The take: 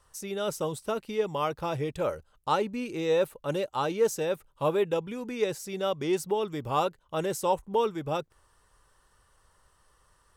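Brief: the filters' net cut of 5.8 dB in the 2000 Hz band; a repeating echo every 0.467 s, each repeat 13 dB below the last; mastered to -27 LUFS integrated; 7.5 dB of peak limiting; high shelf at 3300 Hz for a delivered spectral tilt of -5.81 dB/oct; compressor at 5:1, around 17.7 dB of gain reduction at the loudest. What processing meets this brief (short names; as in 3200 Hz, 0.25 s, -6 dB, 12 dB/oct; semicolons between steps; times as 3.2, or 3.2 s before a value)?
bell 2000 Hz -5.5 dB; high shelf 3300 Hz -7 dB; compressor 5:1, threshold -41 dBFS; limiter -35.5 dBFS; feedback echo 0.467 s, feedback 22%, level -13 dB; gain +18 dB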